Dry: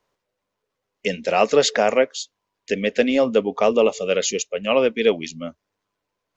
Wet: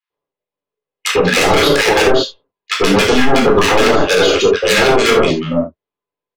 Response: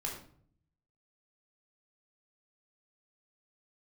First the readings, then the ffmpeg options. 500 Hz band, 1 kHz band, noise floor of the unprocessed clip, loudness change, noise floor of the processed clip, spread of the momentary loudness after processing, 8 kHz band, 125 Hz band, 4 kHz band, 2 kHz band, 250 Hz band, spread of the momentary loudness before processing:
+6.5 dB, +10.0 dB, −80 dBFS, +8.0 dB, below −85 dBFS, 9 LU, can't be measured, +15.0 dB, +12.0 dB, +12.5 dB, +9.0 dB, 13 LU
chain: -filter_complex "[0:a]lowpass=frequency=3700:width=0.5412,lowpass=frequency=3700:width=1.3066,aemphasis=mode=production:type=riaa,agate=range=-25dB:threshold=-41dB:ratio=16:detection=peak,tiltshelf=frequency=770:gain=6.5,aeval=exprs='0.631*(cos(1*acos(clip(val(0)/0.631,-1,1)))-cos(1*PI/2))+0.02*(cos(4*acos(clip(val(0)/0.631,-1,1)))-cos(4*PI/2))+0.02*(cos(5*acos(clip(val(0)/0.631,-1,1)))-cos(5*PI/2))+0.224*(cos(7*acos(clip(val(0)/0.631,-1,1)))-cos(7*PI/2))':channel_layout=same,asoftclip=type=hard:threshold=-17.5dB,acrossover=split=1300[link_01][link_02];[link_01]adelay=100[link_03];[link_03][link_02]amix=inputs=2:normalize=0[link_04];[1:a]atrim=start_sample=2205,atrim=end_sample=3969[link_05];[link_04][link_05]afir=irnorm=-1:irlink=0,alimiter=level_in=16dB:limit=-1dB:release=50:level=0:latency=1,volume=-1dB"

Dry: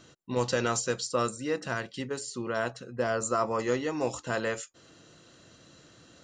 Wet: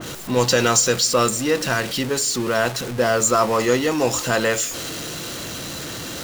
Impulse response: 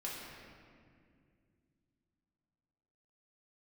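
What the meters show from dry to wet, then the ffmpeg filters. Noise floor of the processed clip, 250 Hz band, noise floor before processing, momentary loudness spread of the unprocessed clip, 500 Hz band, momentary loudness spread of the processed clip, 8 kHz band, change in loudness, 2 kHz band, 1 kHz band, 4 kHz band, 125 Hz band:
−31 dBFS, +10.5 dB, −57 dBFS, 7 LU, +10.0 dB, 13 LU, +16.5 dB, +11.0 dB, +11.5 dB, +10.0 dB, +16.5 dB, +10.5 dB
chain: -filter_complex "[0:a]aeval=exprs='val(0)+0.5*0.0168*sgn(val(0))':channel_layout=same,asplit=2[link_01][link_02];[1:a]atrim=start_sample=2205[link_03];[link_02][link_03]afir=irnorm=-1:irlink=0,volume=-20.5dB[link_04];[link_01][link_04]amix=inputs=2:normalize=0,adynamicequalizer=threshold=0.00708:dfrequency=2300:dqfactor=0.7:tfrequency=2300:tqfactor=0.7:attack=5:release=100:ratio=0.375:range=2.5:mode=boostabove:tftype=highshelf,volume=8dB"

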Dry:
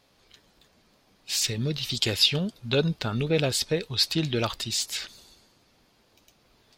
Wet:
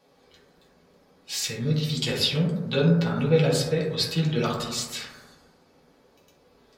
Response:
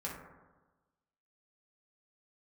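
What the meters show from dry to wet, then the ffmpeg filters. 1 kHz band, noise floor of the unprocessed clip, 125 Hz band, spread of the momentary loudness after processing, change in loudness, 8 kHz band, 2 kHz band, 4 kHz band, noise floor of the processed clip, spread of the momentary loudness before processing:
+2.5 dB, −64 dBFS, +5.0 dB, 9 LU, +1.0 dB, −2.5 dB, 0.0 dB, −3.0 dB, −61 dBFS, 8 LU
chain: -filter_complex "[0:a]lowshelf=frequency=110:gain=-4.5,acrossover=split=380|500|2200[link_01][link_02][link_03][link_04];[link_02]acompressor=mode=upward:threshold=-56dB:ratio=2.5[link_05];[link_01][link_05][link_03][link_04]amix=inputs=4:normalize=0[link_06];[1:a]atrim=start_sample=2205,asetrate=42777,aresample=44100[link_07];[link_06][link_07]afir=irnorm=-1:irlink=0"

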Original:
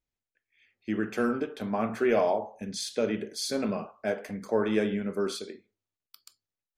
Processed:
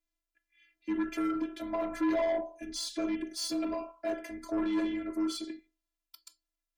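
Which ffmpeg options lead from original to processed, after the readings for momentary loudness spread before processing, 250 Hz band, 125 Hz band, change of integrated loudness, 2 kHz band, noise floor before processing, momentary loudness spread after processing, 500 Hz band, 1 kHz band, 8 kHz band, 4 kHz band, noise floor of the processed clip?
10 LU, −0.5 dB, below −15 dB, −3.5 dB, −6.0 dB, below −85 dBFS, 9 LU, −7.0 dB, −4.5 dB, −2.5 dB, −2.0 dB, below −85 dBFS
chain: -af "afftfilt=real='hypot(re,im)*cos(PI*b)':imag='0':win_size=512:overlap=0.75,asoftclip=type=tanh:threshold=-28.5dB,afreqshift=-27,volume=3.5dB"

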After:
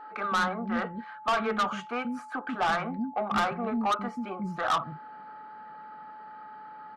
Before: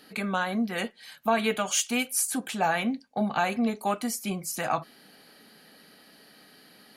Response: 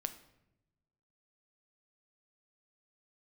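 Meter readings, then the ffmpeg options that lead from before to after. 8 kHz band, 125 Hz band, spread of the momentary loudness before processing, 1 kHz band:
−19.0 dB, −2.5 dB, 6 LU, +2.0 dB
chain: -filter_complex "[0:a]lowpass=frequency=1300:width_type=q:width=5.6,acrossover=split=290[link_01][link_02];[link_01]adelay=140[link_03];[link_03][link_02]amix=inputs=2:normalize=0,asoftclip=type=tanh:threshold=-21.5dB,aeval=exprs='val(0)+0.00708*sin(2*PI*860*n/s)':channel_layout=same"

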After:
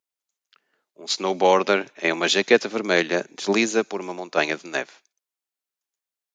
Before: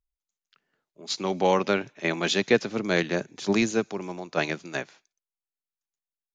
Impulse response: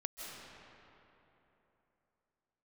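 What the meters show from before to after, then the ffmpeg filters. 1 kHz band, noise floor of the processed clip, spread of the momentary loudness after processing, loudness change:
+5.5 dB, below −85 dBFS, 11 LU, +4.5 dB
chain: -af "highpass=300,volume=5.5dB"

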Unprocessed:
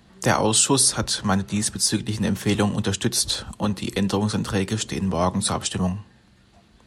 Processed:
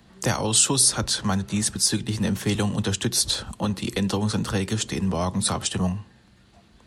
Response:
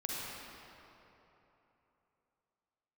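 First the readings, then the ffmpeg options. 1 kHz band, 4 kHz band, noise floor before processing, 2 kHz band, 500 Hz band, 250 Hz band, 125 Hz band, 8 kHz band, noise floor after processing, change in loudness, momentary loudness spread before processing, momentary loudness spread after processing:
−4.5 dB, −0.5 dB, −56 dBFS, −2.5 dB, −4.0 dB, −2.0 dB, −0.5 dB, 0.0 dB, −56 dBFS, −1.0 dB, 8 LU, 8 LU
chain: -filter_complex "[0:a]acrossover=split=160|3000[link_01][link_02][link_03];[link_02]acompressor=threshold=-23dB:ratio=6[link_04];[link_01][link_04][link_03]amix=inputs=3:normalize=0"

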